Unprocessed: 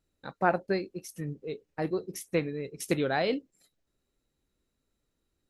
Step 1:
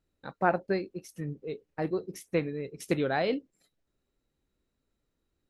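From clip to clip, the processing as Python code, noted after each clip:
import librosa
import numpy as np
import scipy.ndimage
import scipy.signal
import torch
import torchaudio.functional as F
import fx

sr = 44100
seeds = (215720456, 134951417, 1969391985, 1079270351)

y = fx.high_shelf(x, sr, hz=5000.0, db=-8.0)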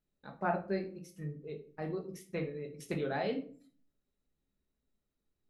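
y = fx.room_shoebox(x, sr, seeds[0], volume_m3=340.0, walls='furnished', distance_m=1.4)
y = y * librosa.db_to_amplitude(-9.0)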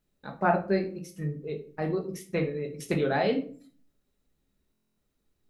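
y = fx.buffer_glitch(x, sr, at_s=(4.72,), block=1024, repeats=10)
y = y * librosa.db_to_amplitude(8.5)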